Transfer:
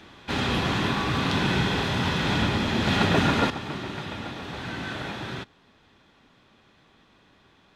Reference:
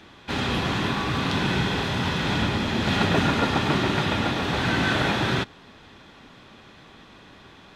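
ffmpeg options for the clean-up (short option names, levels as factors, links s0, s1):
-af "asetnsamples=n=441:p=0,asendcmd='3.5 volume volume 10.5dB',volume=1"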